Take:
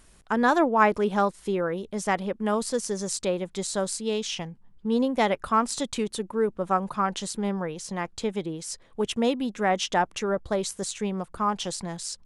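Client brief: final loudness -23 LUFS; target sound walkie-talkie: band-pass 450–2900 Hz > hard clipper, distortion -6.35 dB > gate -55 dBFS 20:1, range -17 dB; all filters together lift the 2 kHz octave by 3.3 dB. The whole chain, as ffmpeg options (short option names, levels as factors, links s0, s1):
-af "highpass=450,lowpass=2900,equalizer=f=2000:t=o:g=5,asoftclip=type=hard:threshold=0.075,agate=range=0.141:threshold=0.00178:ratio=20,volume=2.66"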